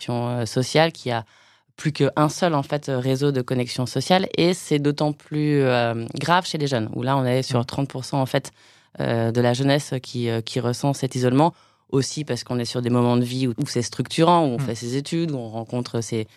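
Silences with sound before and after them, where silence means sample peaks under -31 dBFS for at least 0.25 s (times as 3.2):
1.22–1.79
8.48–8.95
11.5–11.93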